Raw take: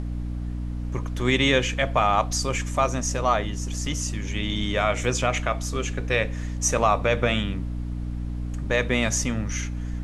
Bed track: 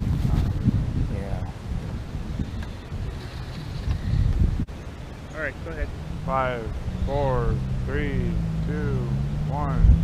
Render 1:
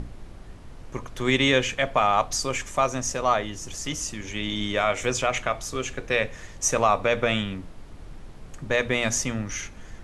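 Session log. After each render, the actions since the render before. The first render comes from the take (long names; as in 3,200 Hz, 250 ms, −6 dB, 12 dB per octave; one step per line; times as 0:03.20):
mains-hum notches 60/120/180/240/300 Hz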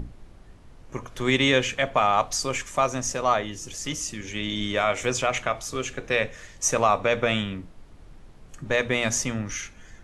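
noise reduction from a noise print 6 dB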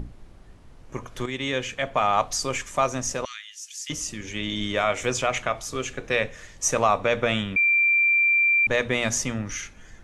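0:01.26–0:02.18: fade in linear, from −12 dB
0:03.25–0:03.90: Bessel high-pass filter 2,900 Hz, order 8
0:07.56–0:08.67: beep over 2,360 Hz −16.5 dBFS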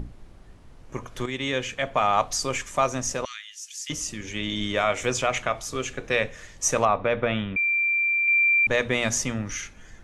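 0:06.85–0:08.28: high-frequency loss of the air 280 metres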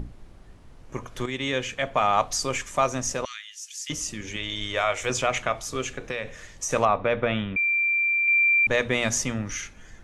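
0:04.36–0:05.10: parametric band 220 Hz −12.5 dB 1.2 octaves
0:05.91–0:06.71: downward compressor 5 to 1, threshold −26 dBFS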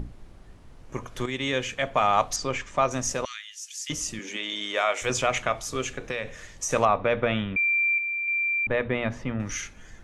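0:02.36–0:02.91: high-frequency loss of the air 120 metres
0:04.19–0:05.02: high-pass filter 210 Hz 24 dB per octave
0:07.98–0:09.40: high-frequency loss of the air 480 metres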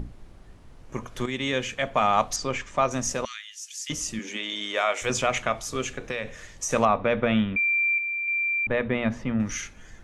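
dynamic equaliser 220 Hz, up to +8 dB, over −49 dBFS, Q 6.1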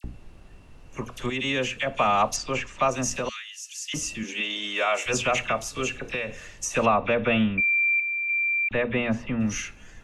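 hollow resonant body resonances 2,700 Hz, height 16 dB, ringing for 35 ms
all-pass dispersion lows, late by 43 ms, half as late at 1,900 Hz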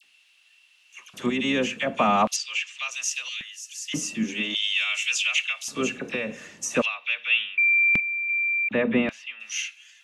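sub-octave generator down 2 octaves, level −5 dB
auto-filter high-pass square 0.44 Hz 210–2,900 Hz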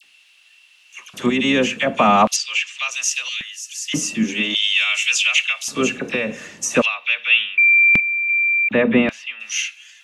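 level +7 dB
brickwall limiter −3 dBFS, peak gain reduction 1.5 dB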